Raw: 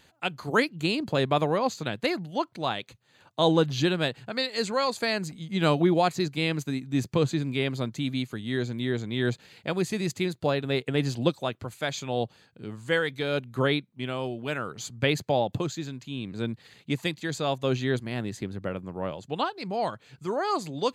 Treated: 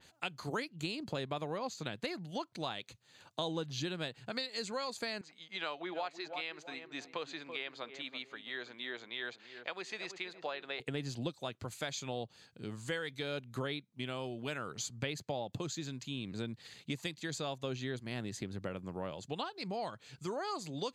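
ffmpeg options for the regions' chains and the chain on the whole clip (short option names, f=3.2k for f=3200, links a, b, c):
-filter_complex "[0:a]asettb=1/sr,asplit=3[a][b][c];[a]atrim=end=5.214[d];[b]atrim=start=5.21:end=10.8,asetpts=PTS-STARTPTS,afade=t=in:d=0.004:c=qsin,afade=t=out:st=5.586:d=0.004:c=qsin,highpass=730,lowpass=3.2k,asplit=2[e][f];[f]adelay=332,lowpass=f=950:p=1,volume=-10dB,asplit=2[g][h];[h]adelay=332,lowpass=f=950:p=1,volume=0.37,asplit=2[i][j];[j]adelay=332,lowpass=f=950:p=1,volume=0.37,asplit=2[k][l];[l]adelay=332,lowpass=f=950:p=1,volume=0.37[m];[e][g][i][k][m]amix=inputs=5:normalize=0,atrim=end_sample=246519[n];[c]atrim=start=10.796[o];[d][n]acrossfade=d=0.004:c1=hsin:c2=qsin[p];[p][o]acrossfade=d=0.004:c1=qsin:c2=hsin,equalizer=f=6.1k:t=o:w=1.9:g=8,acompressor=threshold=-32dB:ratio=4,adynamicequalizer=threshold=0.00447:dfrequency=3400:dqfactor=0.7:tfrequency=3400:tqfactor=0.7:attack=5:release=100:ratio=0.375:range=2:mode=cutabove:tftype=highshelf,volume=-4dB"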